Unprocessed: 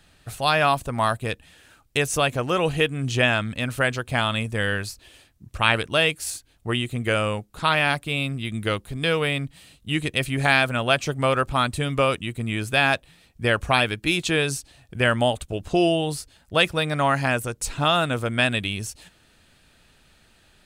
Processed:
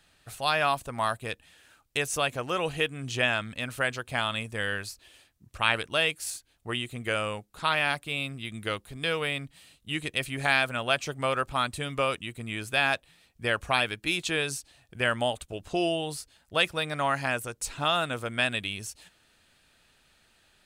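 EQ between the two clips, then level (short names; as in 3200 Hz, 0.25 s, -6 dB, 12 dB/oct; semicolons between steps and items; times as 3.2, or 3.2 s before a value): low shelf 390 Hz -7 dB; -4.5 dB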